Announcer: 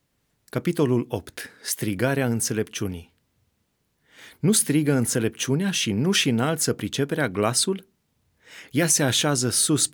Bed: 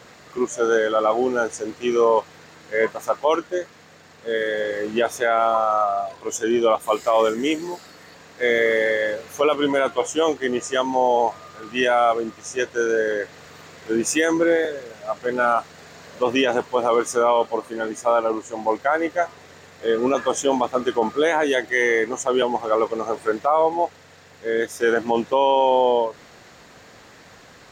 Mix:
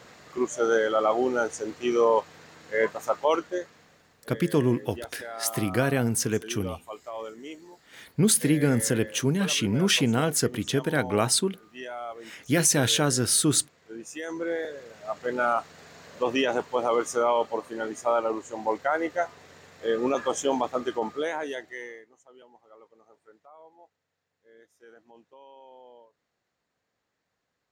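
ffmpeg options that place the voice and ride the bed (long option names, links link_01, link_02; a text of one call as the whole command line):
ffmpeg -i stem1.wav -i stem2.wav -filter_complex "[0:a]adelay=3750,volume=-1.5dB[link_01];[1:a]volume=9.5dB,afade=type=out:start_time=3.38:duration=0.9:silence=0.177828,afade=type=in:start_time=14.12:duration=1.08:silence=0.211349,afade=type=out:start_time=20.6:duration=1.45:silence=0.0398107[link_02];[link_01][link_02]amix=inputs=2:normalize=0" out.wav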